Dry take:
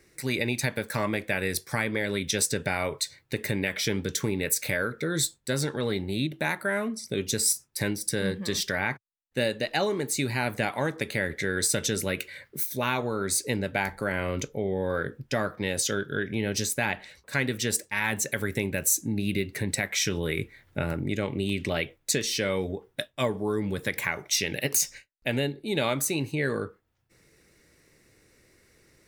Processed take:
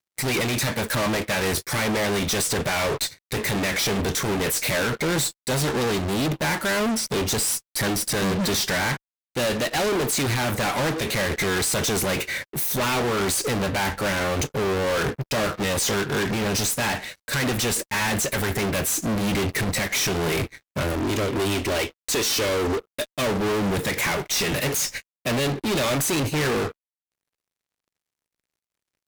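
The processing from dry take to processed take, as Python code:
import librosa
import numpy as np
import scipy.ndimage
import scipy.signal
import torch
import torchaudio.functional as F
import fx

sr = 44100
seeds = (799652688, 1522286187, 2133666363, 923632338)

y = fx.fixed_phaser(x, sr, hz=380.0, stages=4, at=(20.82, 23.15))
y = fx.fuzz(y, sr, gain_db=47.0, gate_db=-54.0)
y = fx.upward_expand(y, sr, threshold_db=-33.0, expansion=2.5)
y = y * librosa.db_to_amplitude(-8.0)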